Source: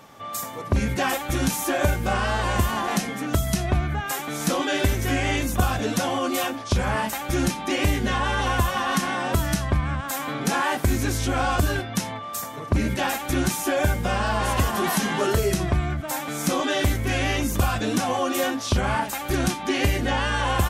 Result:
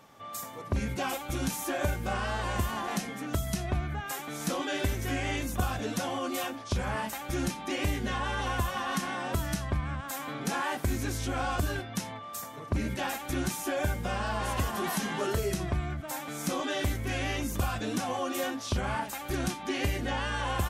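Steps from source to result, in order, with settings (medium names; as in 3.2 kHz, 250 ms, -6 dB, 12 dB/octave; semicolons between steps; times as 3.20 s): 0.92–1.45 s: band-stop 1.8 kHz, Q 6.4; trim -8 dB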